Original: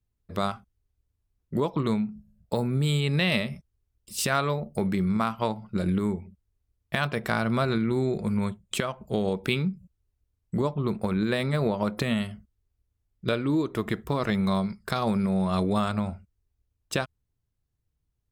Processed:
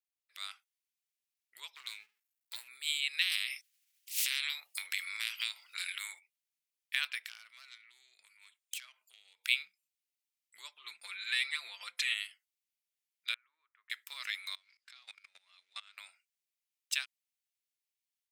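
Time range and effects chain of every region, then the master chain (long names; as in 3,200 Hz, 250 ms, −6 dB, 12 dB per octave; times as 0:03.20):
0:01.75–0:02.68: gain on one half-wave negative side −12 dB + high-shelf EQ 11,000 Hz +8 dB
0:03.21–0:06.18: ceiling on every frequency bin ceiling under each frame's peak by 26 dB + downward compressor 3 to 1, threshold −28 dBFS
0:07.24–0:09.44: phase distortion by the signal itself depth 0.11 ms + high-pass filter 51 Hz + downward compressor 10 to 1, threshold −35 dBFS
0:10.79–0:12.14: low-pass filter 10,000 Hz + comb filter 5.8 ms, depth 92%
0:13.34–0:13.90: low-pass filter 1,400 Hz 24 dB per octave + first difference
0:14.55–0:15.98: mu-law and A-law mismatch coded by mu + output level in coarse steps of 23 dB + band-pass filter 110–5,600 Hz
whole clip: Chebyshev high-pass filter 2,200 Hz, order 3; automatic gain control gain up to 6 dB; level −5 dB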